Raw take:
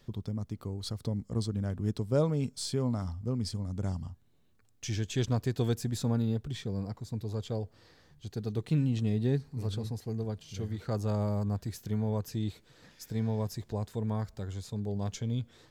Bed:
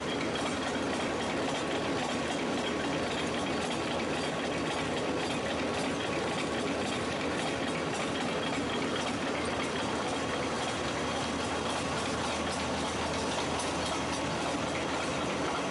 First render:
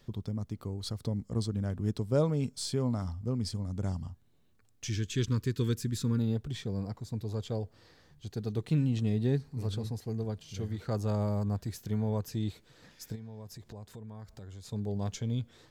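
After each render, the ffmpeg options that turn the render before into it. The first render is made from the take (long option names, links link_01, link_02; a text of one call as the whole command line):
ffmpeg -i in.wav -filter_complex "[0:a]asettb=1/sr,asplit=3[link_01][link_02][link_03];[link_01]atrim=end=4.894[link_04];[link_02]atrim=start=4.89:end=6.19,asetpts=PTS-STARTPTS,afade=type=in:duration=0.004:curve=qsin,afade=type=out:start_time=1.296:duration=0.004:curve=qsin,asuperstop=centerf=690:order=4:qfactor=1.1[link_05];[link_03]atrim=start=6.186[link_06];[link_04][link_05]acrossfade=duration=0.004:curve1=hsin:curve2=qsin[link_07];[link_07][link_06]acrossfade=duration=0.004:curve1=qsin:curve2=hsin,asplit=3[link_08][link_09][link_10];[link_08]afade=type=out:start_time=13.14:duration=0.02[link_11];[link_09]acompressor=threshold=-44dB:ratio=4:attack=3.2:release=140:knee=1:detection=peak,afade=type=in:start_time=13.14:duration=0.02,afade=type=out:start_time=14.65:duration=0.02[link_12];[link_10]afade=type=in:start_time=14.65:duration=0.02[link_13];[link_11][link_12][link_13]amix=inputs=3:normalize=0" out.wav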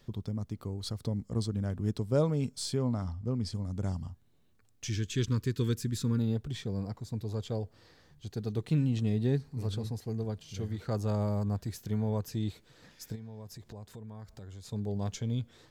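ffmpeg -i in.wav -filter_complex "[0:a]asettb=1/sr,asplit=3[link_01][link_02][link_03];[link_01]atrim=end=2.774[link_04];[link_02]atrim=start=2.77:end=3.53,asetpts=PTS-STARTPTS,afade=type=in:duration=0.004:curve=qsin,afade=type=out:start_time=0.756:duration=0.004:curve=qsin,highshelf=frequency=7500:gain=-9.5[link_05];[link_03]atrim=start=3.526[link_06];[link_04][link_05]acrossfade=duration=0.004:curve1=hsin:curve2=qsin[link_07];[link_07][link_06]acrossfade=duration=0.004:curve1=qsin:curve2=hsin" out.wav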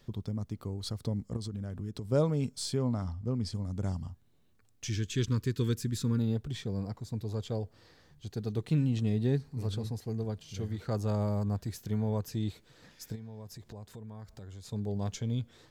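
ffmpeg -i in.wav -filter_complex "[0:a]asettb=1/sr,asplit=3[link_01][link_02][link_03];[link_01]atrim=end=1.364[link_04];[link_02]atrim=start=1.36:end=2.05,asetpts=PTS-STARTPTS,afade=type=in:duration=0.004:curve=qsin,afade=type=out:start_time=0.686:duration=0.004:curve=qsin,acompressor=threshold=-33dB:ratio=6:attack=3.2:release=140:knee=1:detection=peak[link_05];[link_03]atrim=start=2.046[link_06];[link_04][link_05]acrossfade=duration=0.004:curve1=hsin:curve2=qsin[link_07];[link_07][link_06]acrossfade=duration=0.004:curve1=qsin:curve2=hsin" out.wav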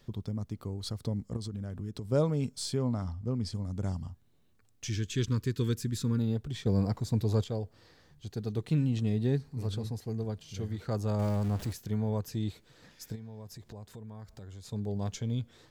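ffmpeg -i in.wav -filter_complex "[0:a]asettb=1/sr,asplit=3[link_01][link_02][link_03];[link_01]atrim=end=11.194[link_04];[link_02]atrim=start=11.19:end=11.73,asetpts=PTS-STARTPTS,afade=type=in:duration=0.004:curve=qsin,afade=type=out:start_time=0.536:duration=0.004:curve=qsin,aeval=exprs='val(0)+0.5*0.0126*sgn(val(0))':channel_layout=same[link_05];[link_03]atrim=start=11.726[link_06];[link_04][link_05]acrossfade=duration=0.004:curve1=hsin:curve2=qsin[link_07];[link_07][link_06]acrossfade=duration=0.004:curve1=qsin:curve2=hsin,asplit=3[link_08][link_09][link_10];[link_08]atrim=end=6.662[link_11];[link_09]atrim=start=6.658:end=7.442,asetpts=PTS-STARTPTS,volume=7.5dB[link_12];[link_10]atrim=start=7.438[link_13];[link_11][link_12]acrossfade=duration=0.004:curve1=hsin:curve2=hsin[link_14];[link_14][link_13]acrossfade=duration=0.004:curve1=hsin:curve2=hsin" out.wav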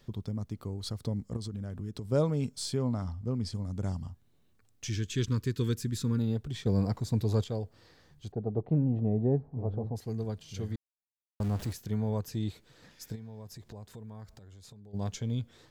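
ffmpeg -i in.wav -filter_complex "[0:a]asettb=1/sr,asplit=3[link_01][link_02][link_03];[link_01]atrim=end=8.324[link_04];[link_02]atrim=start=8.32:end=9.96,asetpts=PTS-STARTPTS,afade=type=in:duration=0.004:curve=qsin,afade=type=out:start_time=1.636:duration=0.004:curve=qsin,lowpass=frequency=700:width_type=q:width=3[link_05];[link_03]atrim=start=9.956[link_06];[link_04][link_05]acrossfade=duration=0.004:curve1=hsin:curve2=qsin[link_07];[link_07][link_06]acrossfade=duration=0.004:curve1=qsin:curve2=hsin,asplit=3[link_08][link_09][link_10];[link_08]afade=type=out:start_time=14.33:duration=0.02[link_11];[link_09]acompressor=threshold=-48dB:ratio=16:attack=3.2:release=140:knee=1:detection=peak,afade=type=in:start_time=14.33:duration=0.02,afade=type=out:start_time=14.93:duration=0.02[link_12];[link_10]afade=type=in:start_time=14.93:duration=0.02[link_13];[link_11][link_12][link_13]amix=inputs=3:normalize=0,asplit=3[link_14][link_15][link_16];[link_14]atrim=end=10.76,asetpts=PTS-STARTPTS,afade=type=out:start_time=10.756:duration=0.004:curve=hsin[link_17];[link_15]atrim=start=10.76:end=11.4,asetpts=PTS-STARTPTS,volume=0[link_18];[link_16]atrim=start=11.4,asetpts=PTS-STARTPTS,afade=type=in:duration=0.004:curve=hsin[link_19];[link_17][link_18][link_19]concat=n=3:v=0:a=1" out.wav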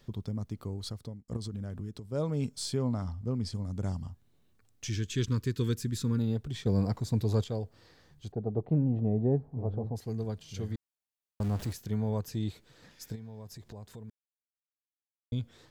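ffmpeg -i in.wav -filter_complex "[0:a]asplit=5[link_01][link_02][link_03][link_04][link_05];[link_01]atrim=end=1.28,asetpts=PTS-STARTPTS,afade=type=out:start_time=0.79:duration=0.49[link_06];[link_02]atrim=start=1.28:end=2.11,asetpts=PTS-STARTPTS,afade=type=in:duration=0.004:curve=hsin,afade=type=out:start_time=0.52:duration=0.31:silence=0.375837[link_07];[link_03]atrim=start=2.11:end=14.1,asetpts=PTS-STARTPTS,afade=type=in:duration=0.31:silence=0.375837,afade=type=out:start_time=11.986:duration=0.004:curve=hsin[link_08];[link_04]atrim=start=14.1:end=15.32,asetpts=PTS-STARTPTS,volume=0[link_09];[link_05]atrim=start=15.32,asetpts=PTS-STARTPTS,afade=type=in:duration=0.004:curve=hsin[link_10];[link_06][link_07][link_08][link_09][link_10]concat=n=5:v=0:a=1" out.wav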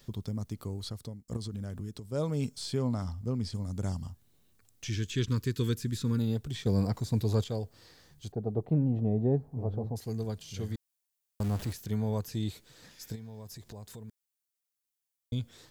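ffmpeg -i in.wav -filter_complex "[0:a]acrossover=split=3800[link_01][link_02];[link_02]acompressor=threshold=-53dB:ratio=4:attack=1:release=60[link_03];[link_01][link_03]amix=inputs=2:normalize=0,highshelf=frequency=4600:gain=11.5" out.wav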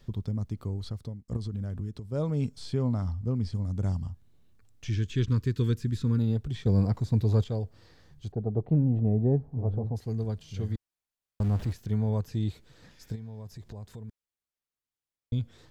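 ffmpeg -i in.wav -af "lowpass=frequency=2800:poles=1,lowshelf=frequency=120:gain=9" out.wav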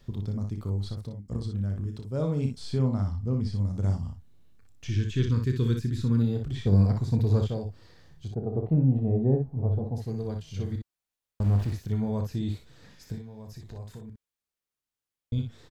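ffmpeg -i in.wav -af "aecho=1:1:31|60:0.355|0.501" out.wav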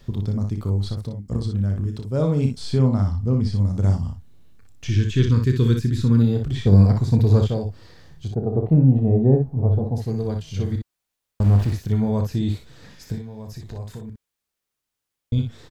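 ffmpeg -i in.wav -af "volume=7.5dB" out.wav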